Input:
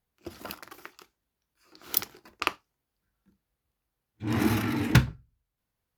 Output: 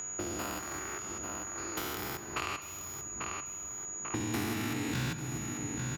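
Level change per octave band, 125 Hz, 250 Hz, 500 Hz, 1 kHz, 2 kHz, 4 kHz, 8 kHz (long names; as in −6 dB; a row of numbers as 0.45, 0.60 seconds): −8.5, −5.5, −2.0, −1.5, −3.5, −3.5, +8.5 decibels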